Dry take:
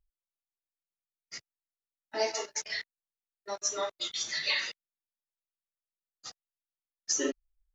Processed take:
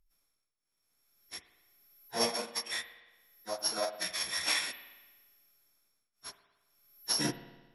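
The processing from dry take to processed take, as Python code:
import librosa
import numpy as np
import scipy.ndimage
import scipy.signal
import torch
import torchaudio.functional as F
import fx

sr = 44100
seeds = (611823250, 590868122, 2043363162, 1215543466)

y = np.r_[np.sort(x[:len(x) // 8 * 8].reshape(-1, 8), axis=1).ravel(), x[len(x) // 8 * 8:]]
y = fx.pitch_keep_formants(y, sr, semitones=-11.0)
y = fx.rev_spring(y, sr, rt60_s=1.2, pass_ms=(55,), chirp_ms=80, drr_db=11.5)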